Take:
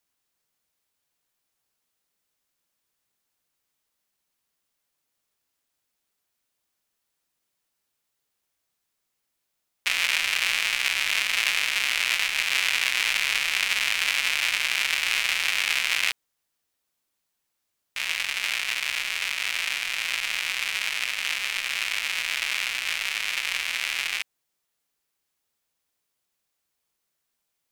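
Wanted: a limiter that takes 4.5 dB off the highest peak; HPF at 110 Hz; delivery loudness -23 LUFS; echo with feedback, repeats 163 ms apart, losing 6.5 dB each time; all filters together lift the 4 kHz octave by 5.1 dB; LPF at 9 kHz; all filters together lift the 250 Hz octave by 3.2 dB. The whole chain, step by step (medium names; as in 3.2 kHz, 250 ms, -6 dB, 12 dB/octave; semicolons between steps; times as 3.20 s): high-pass 110 Hz; low-pass 9 kHz; peaking EQ 250 Hz +4.5 dB; peaking EQ 4 kHz +7 dB; peak limiter -7.5 dBFS; feedback delay 163 ms, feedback 47%, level -6.5 dB; trim -2 dB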